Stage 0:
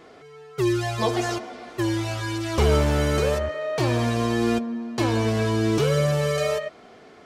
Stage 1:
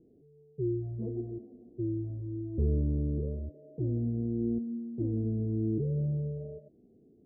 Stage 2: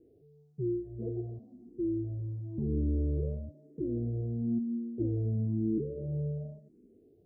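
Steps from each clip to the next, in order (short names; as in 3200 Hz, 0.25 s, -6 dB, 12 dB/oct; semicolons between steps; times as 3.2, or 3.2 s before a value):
inverse Chebyshev low-pass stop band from 1200 Hz, stop band 60 dB; gain -6.5 dB
endless phaser +1 Hz; gain +2.5 dB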